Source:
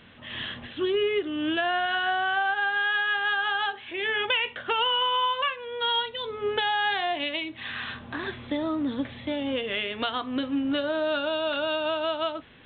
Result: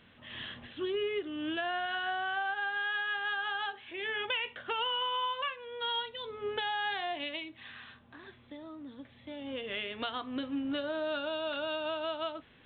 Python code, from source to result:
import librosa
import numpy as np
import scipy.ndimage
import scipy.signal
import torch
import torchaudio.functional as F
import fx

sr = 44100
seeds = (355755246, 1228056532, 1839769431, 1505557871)

y = fx.gain(x, sr, db=fx.line((7.34, -8.0), (8.01, -18.0), (9.07, -18.0), (9.71, -7.5)))